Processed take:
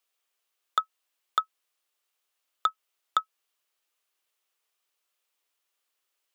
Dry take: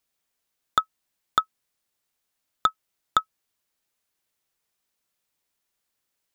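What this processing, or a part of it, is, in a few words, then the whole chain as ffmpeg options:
laptop speaker: -af "highpass=f=350:w=0.5412,highpass=f=350:w=1.3066,equalizer=f=1200:t=o:w=0.27:g=5,equalizer=f=2900:t=o:w=0.6:g=5,alimiter=limit=0.376:level=0:latency=1:release=147,volume=0.841"

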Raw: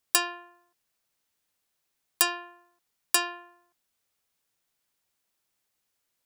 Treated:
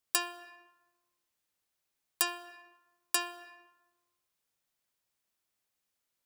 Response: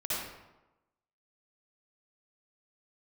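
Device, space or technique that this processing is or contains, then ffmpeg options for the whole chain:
ducked reverb: -filter_complex "[0:a]asplit=3[s0][s1][s2];[1:a]atrim=start_sample=2205[s3];[s1][s3]afir=irnorm=-1:irlink=0[s4];[s2]apad=whole_len=276049[s5];[s4][s5]sidechaincompress=threshold=0.00794:ratio=8:attack=32:release=169,volume=0.237[s6];[s0][s6]amix=inputs=2:normalize=0,volume=0.473"

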